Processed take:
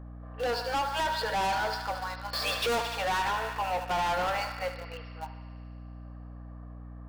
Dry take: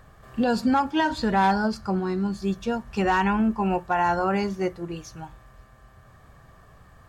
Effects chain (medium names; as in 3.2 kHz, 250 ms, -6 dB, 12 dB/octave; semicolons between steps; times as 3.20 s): level-controlled noise filter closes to 870 Hz, open at -21.5 dBFS; FFT band-pass 440–5600 Hz; 2.33–2.82 s: waveshaping leveller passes 5; on a send: thinning echo 74 ms, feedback 84%, high-pass 770 Hz, level -11 dB; on the sum: saturation -28 dBFS, distortion -6 dB; in parallel at -10.5 dB: word length cut 6-bit, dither none; on the sum: hum 60 Hz, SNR 11 dB